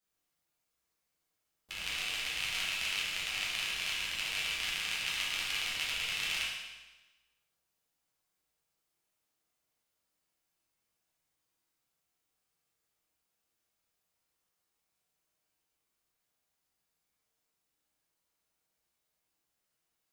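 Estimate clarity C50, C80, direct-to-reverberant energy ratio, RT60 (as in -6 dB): 0.5 dB, 3.5 dB, -7.5 dB, 1.2 s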